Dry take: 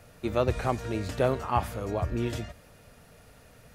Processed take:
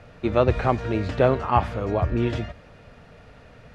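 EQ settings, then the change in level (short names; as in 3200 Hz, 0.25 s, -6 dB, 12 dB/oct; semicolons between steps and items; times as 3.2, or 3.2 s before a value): LPF 3400 Hz 12 dB/oct; +6.5 dB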